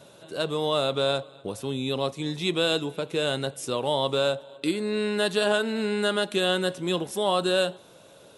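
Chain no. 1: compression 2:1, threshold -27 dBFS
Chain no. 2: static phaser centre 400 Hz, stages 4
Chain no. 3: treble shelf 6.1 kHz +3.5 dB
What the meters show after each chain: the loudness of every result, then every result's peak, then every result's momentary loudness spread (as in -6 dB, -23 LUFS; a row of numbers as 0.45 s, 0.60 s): -30.0 LUFS, -28.5 LUFS, -26.0 LUFS; -15.0 dBFS, -13.0 dBFS, -10.5 dBFS; 5 LU, 6 LU, 6 LU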